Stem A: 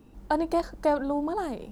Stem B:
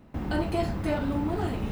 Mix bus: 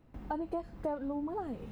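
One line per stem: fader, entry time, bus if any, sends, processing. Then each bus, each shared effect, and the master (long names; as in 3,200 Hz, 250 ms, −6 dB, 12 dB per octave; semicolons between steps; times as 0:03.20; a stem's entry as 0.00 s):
0.0 dB, 0.00 s, no send, spectral dynamics exaggerated over time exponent 1.5; low-pass filter 1,200 Hz 12 dB per octave
−10.5 dB, 0.00 s, no send, downward compressor 1.5 to 1, threshold −42 dBFS, peak gain reduction 7.5 dB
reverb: not used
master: downward compressor 3 to 1, threshold −35 dBFS, peak gain reduction 11 dB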